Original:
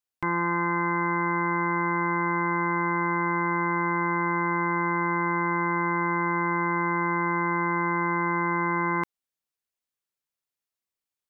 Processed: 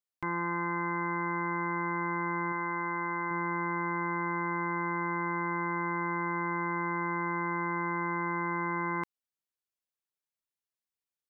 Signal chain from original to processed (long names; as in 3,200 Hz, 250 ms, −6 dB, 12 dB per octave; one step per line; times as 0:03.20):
0:02.52–0:03.31: low-shelf EQ 260 Hz −7 dB
level −6.5 dB